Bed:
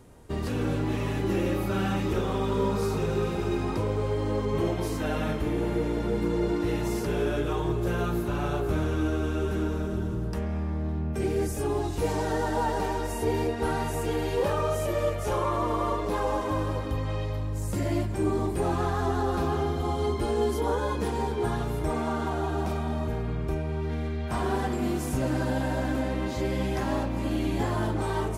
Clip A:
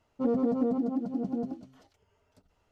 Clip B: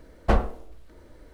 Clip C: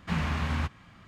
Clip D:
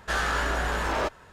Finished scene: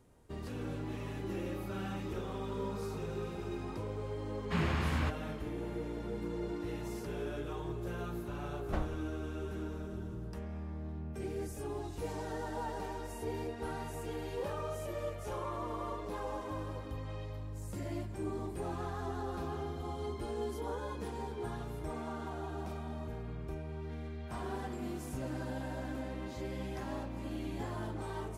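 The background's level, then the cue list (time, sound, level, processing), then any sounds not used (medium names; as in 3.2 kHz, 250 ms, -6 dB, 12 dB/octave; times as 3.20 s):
bed -12 dB
4.43 s: add C -3.5 dB + band-stop 5.9 kHz, Q 10
8.44 s: add B -16 dB
not used: A, D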